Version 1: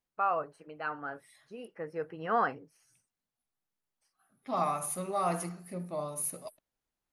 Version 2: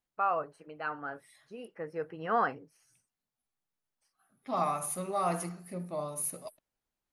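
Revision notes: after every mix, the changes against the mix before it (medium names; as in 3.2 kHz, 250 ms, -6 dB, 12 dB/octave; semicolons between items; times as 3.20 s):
no change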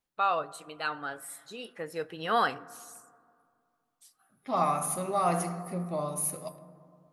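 first voice: remove boxcar filter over 12 samples; reverb: on, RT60 2.2 s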